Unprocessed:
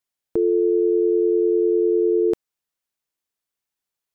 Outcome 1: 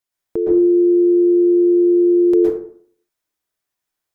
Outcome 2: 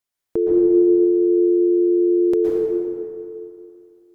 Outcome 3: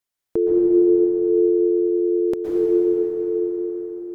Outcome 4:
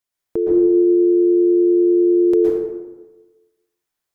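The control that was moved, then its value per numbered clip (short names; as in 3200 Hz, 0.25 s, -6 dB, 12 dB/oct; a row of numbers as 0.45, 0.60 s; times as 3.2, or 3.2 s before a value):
plate-style reverb, RT60: 0.56, 2.5, 5.3, 1.2 s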